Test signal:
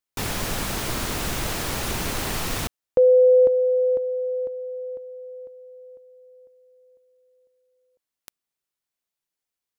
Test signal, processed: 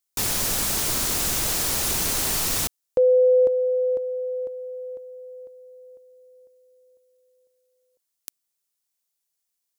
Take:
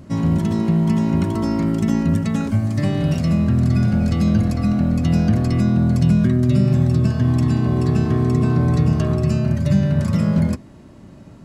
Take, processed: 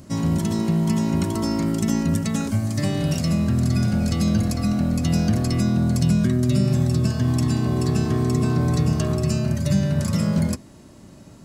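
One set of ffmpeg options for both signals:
ffmpeg -i in.wav -af "bass=frequency=250:gain=-2,treble=frequency=4000:gain=11,volume=-2dB" out.wav

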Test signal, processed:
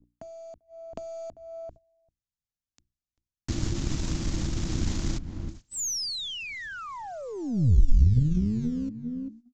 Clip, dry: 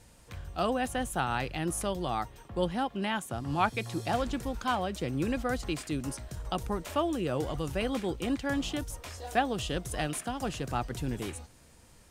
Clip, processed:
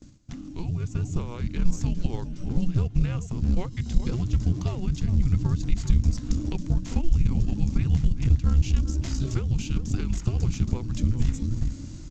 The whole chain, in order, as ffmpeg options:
ffmpeg -i in.wav -filter_complex "[0:a]acrusher=bits=5:mode=log:mix=0:aa=0.000001,asplit=2[link_01][link_02];[link_02]adelay=393,lowpass=frequency=1100:poles=1,volume=-13dB,asplit=2[link_03][link_04];[link_04]adelay=393,lowpass=frequency=1100:poles=1,volume=0.17[link_05];[link_03][link_05]amix=inputs=2:normalize=0[link_06];[link_01][link_06]amix=inputs=2:normalize=0,aeval=exprs='val(0)+0.00251*(sin(2*PI*60*n/s)+sin(2*PI*2*60*n/s)/2+sin(2*PI*3*60*n/s)/3+sin(2*PI*4*60*n/s)/4+sin(2*PI*5*60*n/s)/5)':channel_layout=same,bandreject=frequency=60:width_type=h:width=6,bandreject=frequency=120:width_type=h:width=6,bandreject=frequency=180:width_type=h:width=6,bandreject=frequency=240:width_type=h:width=6,bandreject=frequency=300:width_type=h:width=6,bandreject=frequency=360:width_type=h:width=6,bandreject=frequency=420:width_type=h:width=6,acompressor=threshold=-43dB:ratio=8,afreqshift=-350,dynaudnorm=framelen=110:gausssize=17:maxgain=7dB,aresample=16000,aresample=44100,bass=frequency=250:gain=14,treble=frequency=4000:gain=10,agate=range=-16dB:threshold=-47dB:ratio=16:detection=peak,lowshelf=frequency=130:gain=10.5,aeval=exprs='0.501*(cos(1*acos(clip(val(0)/0.501,-1,1)))-cos(1*PI/2))+0.0708*(cos(2*acos(clip(val(0)/0.501,-1,1)))-cos(2*PI/2))+0.0178*(cos(4*acos(clip(val(0)/0.501,-1,1)))-cos(4*PI/2))+0.0398*(cos(6*acos(clip(val(0)/0.501,-1,1)))-cos(6*PI/2))':channel_layout=same,volume=-1.5dB" out.wav

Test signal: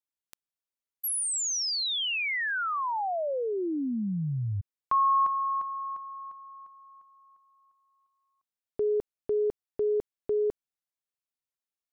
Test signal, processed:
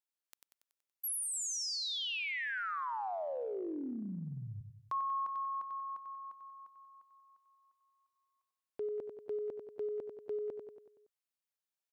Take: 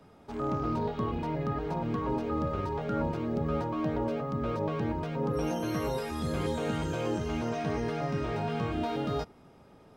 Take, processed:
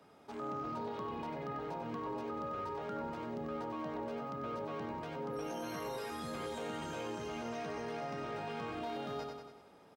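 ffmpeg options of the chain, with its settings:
ffmpeg -i in.wav -filter_complex "[0:a]highpass=frequency=400:poles=1,asplit=2[link_01][link_02];[link_02]aecho=0:1:94|188|282|376|470|564:0.398|0.207|0.108|0.056|0.0291|0.0151[link_03];[link_01][link_03]amix=inputs=2:normalize=0,acompressor=threshold=-35dB:ratio=2.5:attack=0.36:release=39:knee=6:detection=rms,volume=-2dB" out.wav

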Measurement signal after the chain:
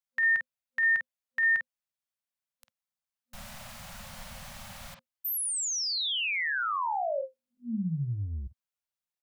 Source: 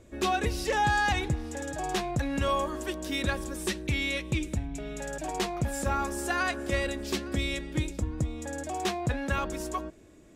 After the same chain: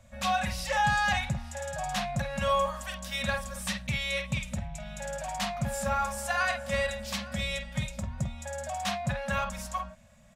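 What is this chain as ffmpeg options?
ffmpeg -i in.wav -filter_complex "[0:a]afftfilt=real='re*(1-between(b*sr/4096,240,520))':imag='im*(1-between(b*sr/4096,240,520))':win_size=4096:overlap=0.75,acrossover=split=110|5100[link_01][link_02][link_03];[link_01]asoftclip=type=tanh:threshold=-35dB[link_04];[link_02]asplit=2[link_05][link_06];[link_06]adelay=49,volume=-5dB[link_07];[link_05][link_07]amix=inputs=2:normalize=0[link_08];[link_04][link_08][link_03]amix=inputs=3:normalize=0" out.wav

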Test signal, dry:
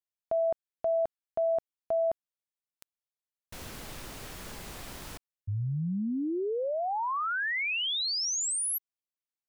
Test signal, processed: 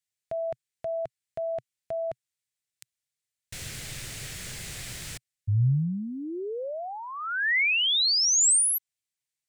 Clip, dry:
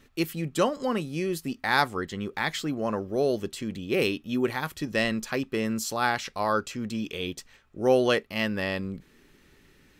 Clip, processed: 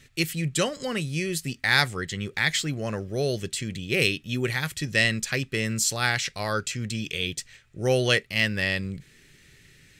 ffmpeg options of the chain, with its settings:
ffmpeg -i in.wav -af "equalizer=frequency=125:width_type=o:width=1:gain=11,equalizer=frequency=250:width_type=o:width=1:gain=-6,equalizer=frequency=1000:width_type=o:width=1:gain=-9,equalizer=frequency=2000:width_type=o:width=1:gain=8,equalizer=frequency=4000:width_type=o:width=1:gain=4,equalizer=frequency=8000:width_type=o:width=1:gain=10" out.wav

